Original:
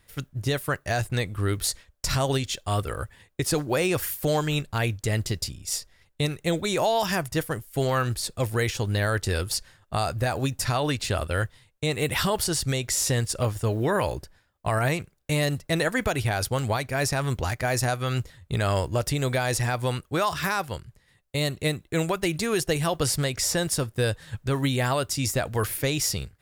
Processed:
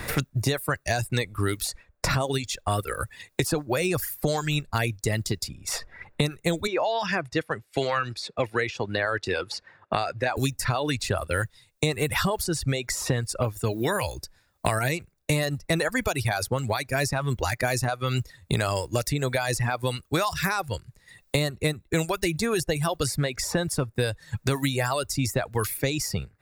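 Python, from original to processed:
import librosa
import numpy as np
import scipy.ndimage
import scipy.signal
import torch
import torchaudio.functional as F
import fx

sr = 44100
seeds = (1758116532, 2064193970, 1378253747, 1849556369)

y = fx.bandpass_edges(x, sr, low_hz=290.0, high_hz=2400.0, at=(6.67, 10.37))
y = fx.dereverb_blind(y, sr, rt60_s=1.1)
y = fx.notch(y, sr, hz=3100.0, q=8.3)
y = fx.band_squash(y, sr, depth_pct=100)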